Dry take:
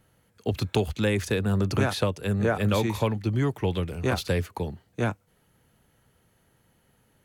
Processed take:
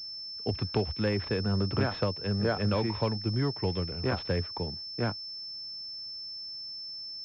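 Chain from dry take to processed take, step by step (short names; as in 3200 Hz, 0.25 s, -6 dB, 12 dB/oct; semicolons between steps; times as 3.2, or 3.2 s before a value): pulse-width modulation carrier 5300 Hz; gain -4 dB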